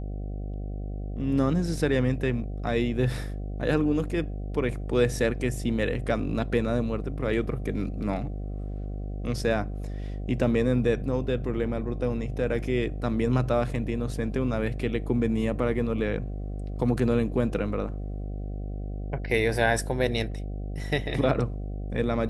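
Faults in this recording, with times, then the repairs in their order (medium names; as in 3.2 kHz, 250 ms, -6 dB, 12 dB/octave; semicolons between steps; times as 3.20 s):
buzz 50 Hz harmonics 15 -33 dBFS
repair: de-hum 50 Hz, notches 15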